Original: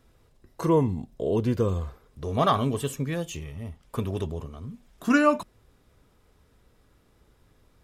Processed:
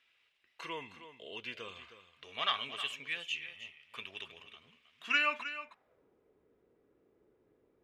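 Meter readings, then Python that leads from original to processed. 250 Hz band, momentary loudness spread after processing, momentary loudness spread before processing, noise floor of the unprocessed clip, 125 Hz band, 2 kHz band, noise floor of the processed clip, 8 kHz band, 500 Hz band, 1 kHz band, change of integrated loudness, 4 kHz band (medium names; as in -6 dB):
-27.5 dB, 21 LU, 17 LU, -63 dBFS, -34.5 dB, -1.0 dB, -74 dBFS, -14.5 dB, -21.5 dB, -11.5 dB, -9.5 dB, +3.5 dB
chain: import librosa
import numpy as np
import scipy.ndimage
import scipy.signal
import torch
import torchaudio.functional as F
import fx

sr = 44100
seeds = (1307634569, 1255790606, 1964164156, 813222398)

p1 = fx.peak_eq(x, sr, hz=2300.0, db=8.5, octaves=1.3)
p2 = fx.filter_sweep_bandpass(p1, sr, from_hz=2800.0, to_hz=390.0, start_s=5.24, end_s=6.08, q=2.5)
y = p2 + fx.echo_single(p2, sr, ms=314, db=-12.0, dry=0)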